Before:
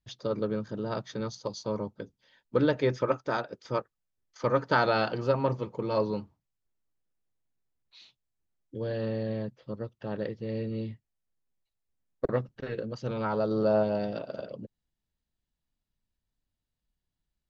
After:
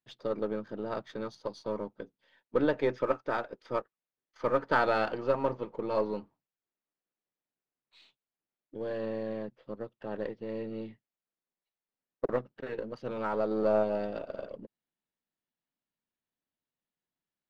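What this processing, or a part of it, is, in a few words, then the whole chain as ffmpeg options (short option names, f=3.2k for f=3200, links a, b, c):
crystal radio: -af "highpass=240,lowpass=3.1k,aeval=exprs='if(lt(val(0),0),0.708*val(0),val(0))':c=same"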